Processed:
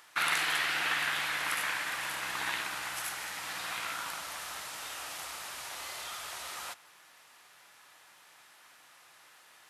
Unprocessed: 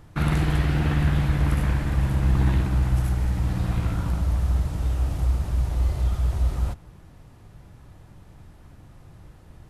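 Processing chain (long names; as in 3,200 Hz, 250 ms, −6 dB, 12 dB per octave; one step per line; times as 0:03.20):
high-pass filter 1,500 Hz 12 dB per octave
level +7 dB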